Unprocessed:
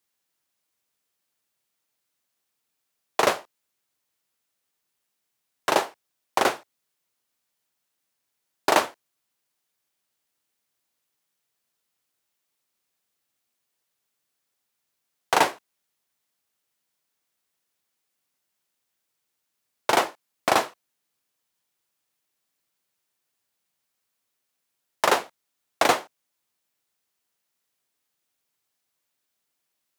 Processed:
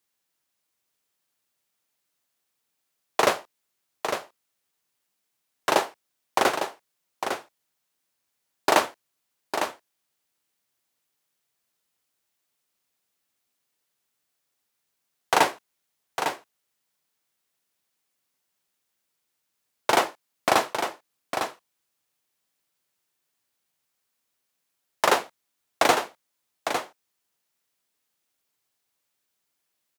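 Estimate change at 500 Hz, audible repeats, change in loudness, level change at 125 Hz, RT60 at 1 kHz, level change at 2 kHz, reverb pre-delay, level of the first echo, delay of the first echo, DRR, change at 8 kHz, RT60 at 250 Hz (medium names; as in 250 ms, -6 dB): +0.5 dB, 1, -1.5 dB, +0.5 dB, no reverb, +0.5 dB, no reverb, -7.5 dB, 854 ms, no reverb, +0.5 dB, no reverb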